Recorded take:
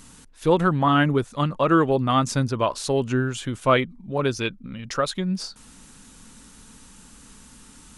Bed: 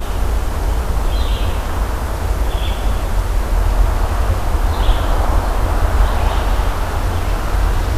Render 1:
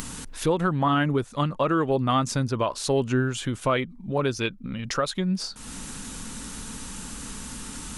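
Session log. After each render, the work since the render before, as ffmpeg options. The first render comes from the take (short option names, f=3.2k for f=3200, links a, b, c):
-af "acompressor=mode=upward:threshold=-25dB:ratio=2.5,alimiter=limit=-13.5dB:level=0:latency=1:release=202"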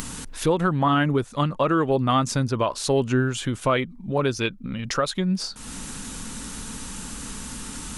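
-af "volume=2dB"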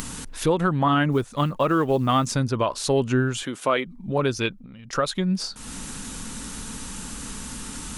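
-filter_complex "[0:a]asplit=3[a][b][c];[a]afade=t=out:st=1.11:d=0.02[d];[b]acrusher=bits=9:mode=log:mix=0:aa=0.000001,afade=t=in:st=1.11:d=0.02,afade=t=out:st=2.33:d=0.02[e];[c]afade=t=in:st=2.33:d=0.02[f];[d][e][f]amix=inputs=3:normalize=0,asettb=1/sr,asplit=3[g][h][i];[g]atrim=end=3.434[j];[h]atrim=start=3.43:end=3.86,asetpts=PTS-STARTPTS,afade=t=in:d=0.004:c=qsin,afade=t=out:st=0.426:d=0.004:c=qsin,highpass=270[k];[i]atrim=start=3.856[l];[j][k]acrossfade=d=0.004:c1=hsin:c2=qsin[m];[m][l]acrossfade=d=0.004:c1=qsin:c2=hsin,asettb=1/sr,asplit=3[n][o][p];[n]atrim=end=4.524[q];[o]atrim=start=4.52:end=4.93,asetpts=PTS-STARTPTS,afade=t=in:d=0.004:c=qsin,afade=t=out:st=0.406:d=0.004:c=qsin,acompressor=threshold=-40dB:ratio=6:attack=3.2:release=140:knee=1:detection=peak[r];[p]atrim=start=4.926[s];[q][r]acrossfade=d=0.004:c1=hsin:c2=qsin[t];[t][s]acrossfade=d=0.004:c1=qsin:c2=hsin"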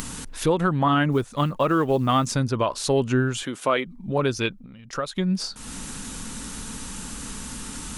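-filter_complex "[0:a]asplit=2[a][b];[a]atrim=end=5.16,asetpts=PTS-STARTPTS,afade=t=out:st=4.64:d=0.52:silence=0.398107[c];[b]atrim=start=5.16,asetpts=PTS-STARTPTS,afade=t=in:d=0.004:c=hsin:silence=0.398107[d];[c][d]concat=n=2:v=0:a=1"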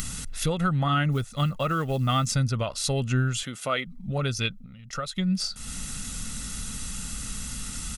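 -af "equalizer=f=660:w=0.65:g=-10,aecho=1:1:1.5:0.57"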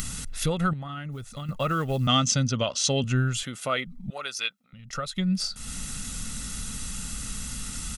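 -filter_complex "[0:a]asettb=1/sr,asplit=3[a][b][c];[a]atrim=end=0.734[d];[b]atrim=start=0.73:end=1.49,asetpts=PTS-STARTPTS,afade=t=in:d=0.004:c=qsin,afade=t=out:st=0.756:d=0.004:c=qsin,acompressor=threshold=-32dB:ratio=10:attack=3.2:release=140:knee=1:detection=peak[e];[c]atrim=start=1.486[f];[d][e]acrossfade=d=0.004:c1=hsin:c2=qsin[g];[g][f]acrossfade=d=0.004:c1=qsin:c2=hsin,asettb=1/sr,asplit=3[h][i][j];[h]atrim=end=2.074[k];[i]atrim=start=2.07:end=3.04,asetpts=PTS-STARTPTS,afade=t=in:d=0.004:c=qsin,afade=t=out:st=0.966:d=0.004:c=qsin,highpass=110,equalizer=f=250:t=q:w=4:g=6,equalizer=f=560:t=q:w=4:g=4,equalizer=f=3.1k:t=q:w=4:g=10,equalizer=f=6.1k:t=q:w=4:g=10,lowpass=f=8k:w=0.5412,lowpass=f=8k:w=1.3066[l];[j]atrim=start=3.036[m];[k][l]acrossfade=d=0.004:c1=hsin:c2=qsin[n];[n][m]acrossfade=d=0.004:c1=qsin:c2=hsin,asettb=1/sr,asplit=3[o][p][q];[o]atrim=end=4.104[r];[p]atrim=start=4.1:end=4.73,asetpts=PTS-STARTPTS,afade=t=in:d=0.004:c=qsin,afade=t=out:st=0.626:d=0.004:c=qsin,highpass=790[s];[q]atrim=start=4.726[t];[r][s]acrossfade=d=0.004:c1=hsin:c2=qsin[u];[u][t]acrossfade=d=0.004:c1=qsin:c2=hsin"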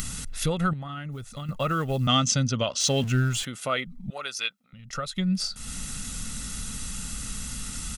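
-filter_complex "[0:a]asettb=1/sr,asplit=3[a][b][c];[a]atrim=end=2.804[d];[b]atrim=start=2.8:end=3.45,asetpts=PTS-STARTPTS,afade=t=in:d=0.004:c=qsin,afade=t=out:st=0.646:d=0.004:c=qsin,aeval=exprs='val(0)+0.5*0.015*sgn(val(0))':c=same[e];[c]atrim=start=3.446[f];[d][e]acrossfade=d=0.004:c1=hsin:c2=qsin[g];[g][f]acrossfade=d=0.004:c1=qsin:c2=hsin"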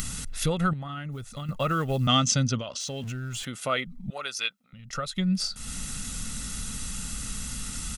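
-filter_complex "[0:a]asettb=1/sr,asplit=3[a][b][c];[a]atrim=end=2.584[d];[b]atrim=start=2.58:end=3.48,asetpts=PTS-STARTPTS,afade=t=in:d=0.004:c=qsin,afade=t=out:st=0.896:d=0.004:c=qsin,acompressor=threshold=-30dB:ratio=10:attack=3.2:release=140:knee=1:detection=peak[e];[c]atrim=start=3.476[f];[d][e]acrossfade=d=0.004:c1=hsin:c2=qsin[g];[g][f]acrossfade=d=0.004:c1=qsin:c2=hsin"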